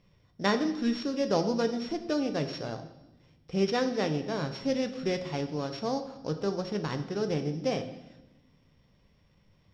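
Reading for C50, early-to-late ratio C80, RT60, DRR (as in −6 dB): 11.0 dB, 13.0 dB, 1.0 s, 7.0 dB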